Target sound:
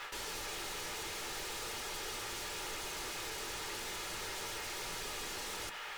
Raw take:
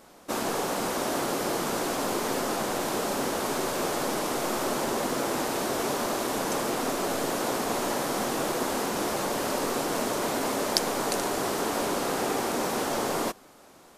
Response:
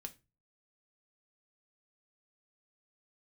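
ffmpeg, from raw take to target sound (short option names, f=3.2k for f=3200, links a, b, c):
-filter_complex "[0:a]acrossover=split=410 2600:gain=0.224 1 0.2[a][b][c];[a][b][c]amix=inputs=3:normalize=0,areverse,acompressor=threshold=-39dB:ratio=6,areverse,alimiter=level_in=13dB:limit=-24dB:level=0:latency=1:release=172,volume=-13dB,aeval=exprs='0.0141*sin(PI/2*3.98*val(0)/0.0141)':c=same[d];[1:a]atrim=start_sample=2205[e];[d][e]afir=irnorm=-1:irlink=0,asetrate=103194,aresample=44100,volume=2.5dB"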